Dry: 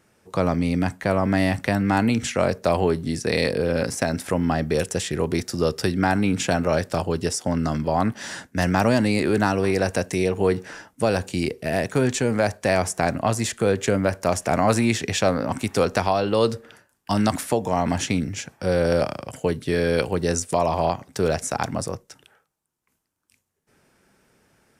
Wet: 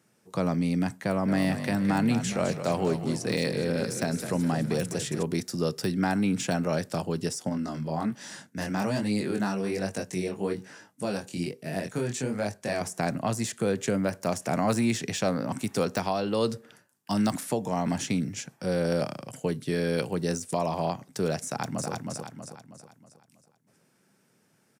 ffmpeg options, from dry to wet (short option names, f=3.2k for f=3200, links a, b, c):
-filter_complex "[0:a]asettb=1/sr,asplit=3[a][b][c];[a]atrim=end=1.074[d];[b]atrim=start=1.07:end=5.23,asetpts=PTS-STARTPTS,afade=t=in:d=0.004:c=qsin,afade=t=out:st=4.156:d=0.004:c=qsin,asplit=8[e][f][g][h][i][j][k][l];[f]adelay=208,afreqshift=-41,volume=-9.5dB[m];[g]adelay=416,afreqshift=-82,volume=-14.5dB[n];[h]adelay=624,afreqshift=-123,volume=-19.6dB[o];[i]adelay=832,afreqshift=-164,volume=-24.6dB[p];[j]adelay=1040,afreqshift=-205,volume=-29.6dB[q];[k]adelay=1248,afreqshift=-246,volume=-34.7dB[r];[l]adelay=1456,afreqshift=-287,volume=-39.7dB[s];[e][m][n][o][p][q][r][s]amix=inputs=8:normalize=0,atrim=end_sample=183456[t];[c]atrim=start=5.226[u];[d][t]acrossfade=d=0.004:c1=hsin:c2=qsin[v];[v][u]acrossfade=d=0.004:c1=qsin:c2=hsin,asettb=1/sr,asplit=3[w][x][y];[w]atrim=end=7.494[z];[x]atrim=start=7.49:end=12.81,asetpts=PTS-STARTPTS,afade=t=in:d=0.004:c=qsin,afade=t=out:st=5.316:d=0.004:c=qsin,flanger=delay=19.5:depth=6:speed=1.2[aa];[y]atrim=start=12.806[ab];[z][aa]acrossfade=d=0.004:c1=hsin:c2=qsin[ac];[ac][ab]acrossfade=d=0.004:c1=qsin:c2=hsin,asplit=2[ad][ae];[ae]afade=t=in:st=21.46:d=0.01,afade=t=out:st=21.91:d=0.01,aecho=0:1:320|640|960|1280|1600|1920:0.668344|0.300755|0.13534|0.0609028|0.0274063|0.0123328[af];[ad][af]amix=inputs=2:normalize=0,deesser=0.5,highpass=f=130:w=0.5412,highpass=f=130:w=1.3066,bass=f=250:g=7,treble=f=4k:g=5,volume=-7.5dB"